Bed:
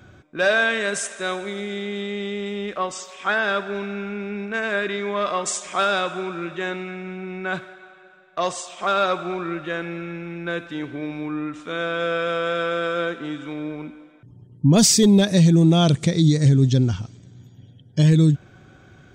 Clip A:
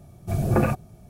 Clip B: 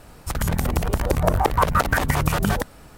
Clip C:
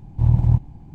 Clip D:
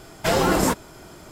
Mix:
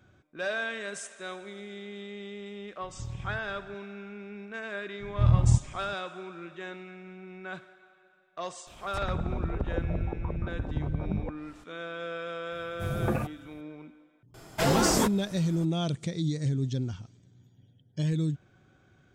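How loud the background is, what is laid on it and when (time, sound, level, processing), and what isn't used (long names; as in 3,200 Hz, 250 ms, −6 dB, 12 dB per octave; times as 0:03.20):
bed −13 dB
0:02.81: mix in C −11 dB + downward compressor, threshold −23 dBFS
0:05.00: mix in C −5 dB
0:08.67: mix in B −8.5 dB + treble cut that deepens with the level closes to 330 Hz, closed at −16 dBFS
0:12.52: mix in A −8 dB
0:14.34: mix in D −5.5 dB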